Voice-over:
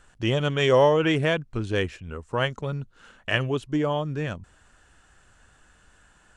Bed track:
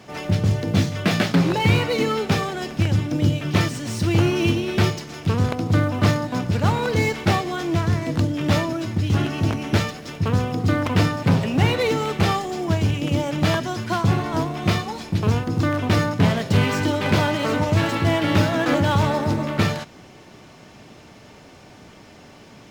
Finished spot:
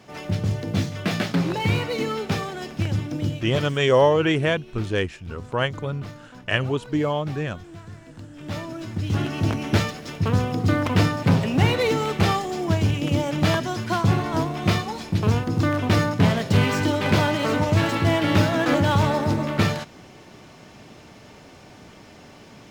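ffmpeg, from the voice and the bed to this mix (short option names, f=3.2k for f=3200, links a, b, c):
-filter_complex "[0:a]adelay=3200,volume=1.5dB[a];[1:a]volume=15dB,afade=t=out:st=3.05:d=0.86:silence=0.16788,afade=t=in:st=8.29:d=1.29:silence=0.105925[b];[a][b]amix=inputs=2:normalize=0"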